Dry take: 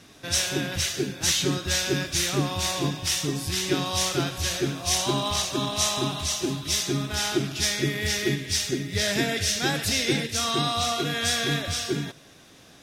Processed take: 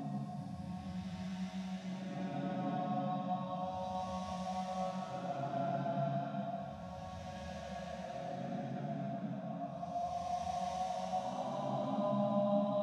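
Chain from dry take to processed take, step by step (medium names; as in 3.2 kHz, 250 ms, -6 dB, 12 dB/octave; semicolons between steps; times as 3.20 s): two resonant band-passes 370 Hz, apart 1.7 oct; Paulstretch 6.8×, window 0.25 s, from 3.36 s; trim +1.5 dB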